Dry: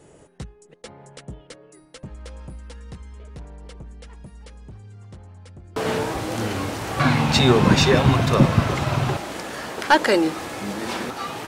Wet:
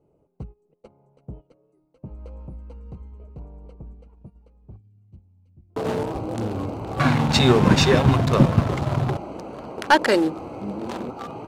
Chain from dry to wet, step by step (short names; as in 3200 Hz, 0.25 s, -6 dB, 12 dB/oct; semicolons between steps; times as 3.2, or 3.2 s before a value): Wiener smoothing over 25 samples; gate -40 dBFS, range -13 dB; 4.76–5.7 band shelf 840 Hz -13 dB 2.5 oct